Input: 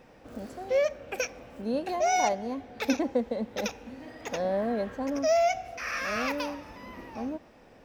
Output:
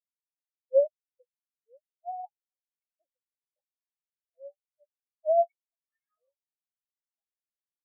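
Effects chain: LFO high-pass sine 2.2 Hz 480–2300 Hz; spectral expander 4:1; gain -4 dB

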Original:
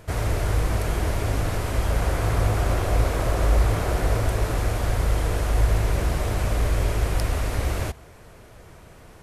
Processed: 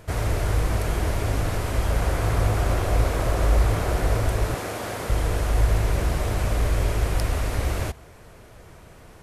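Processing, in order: 4.54–5.1 HPF 200 Hz 12 dB/oct

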